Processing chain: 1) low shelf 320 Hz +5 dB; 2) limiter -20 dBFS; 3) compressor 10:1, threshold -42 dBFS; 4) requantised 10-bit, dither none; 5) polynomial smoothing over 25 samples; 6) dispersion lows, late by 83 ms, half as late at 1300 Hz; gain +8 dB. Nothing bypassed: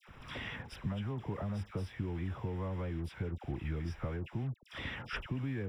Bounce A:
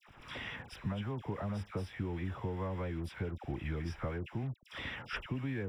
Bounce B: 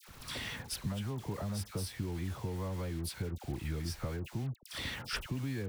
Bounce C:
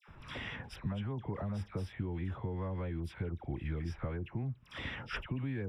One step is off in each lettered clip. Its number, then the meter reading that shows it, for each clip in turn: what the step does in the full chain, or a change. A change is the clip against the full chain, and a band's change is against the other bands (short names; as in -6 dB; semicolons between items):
1, 125 Hz band -2.0 dB; 5, 4 kHz band +7.0 dB; 4, distortion -19 dB